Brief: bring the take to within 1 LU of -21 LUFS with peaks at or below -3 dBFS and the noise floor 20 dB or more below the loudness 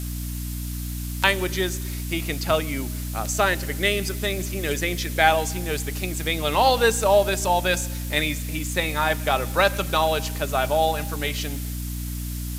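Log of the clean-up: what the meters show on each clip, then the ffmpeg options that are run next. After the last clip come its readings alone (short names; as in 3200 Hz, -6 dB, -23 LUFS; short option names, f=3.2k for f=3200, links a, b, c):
hum 60 Hz; harmonics up to 300 Hz; hum level -28 dBFS; noise floor -30 dBFS; noise floor target -44 dBFS; loudness -23.5 LUFS; peak -2.5 dBFS; loudness target -21.0 LUFS
-> -af "bandreject=f=60:t=h:w=4,bandreject=f=120:t=h:w=4,bandreject=f=180:t=h:w=4,bandreject=f=240:t=h:w=4,bandreject=f=300:t=h:w=4"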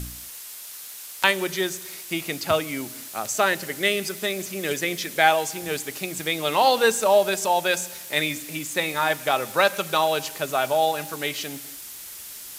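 hum none; noise floor -39 dBFS; noise floor target -44 dBFS
-> -af "afftdn=nr=6:nf=-39"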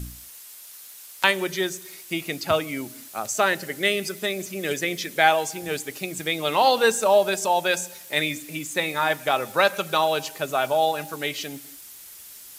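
noise floor -44 dBFS; loudness -23.5 LUFS; peak -3.0 dBFS; loudness target -21.0 LUFS
-> -af "volume=2.5dB,alimiter=limit=-3dB:level=0:latency=1"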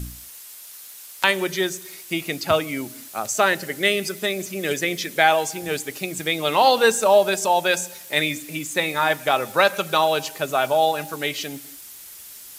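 loudness -21.5 LUFS; peak -3.0 dBFS; noise floor -42 dBFS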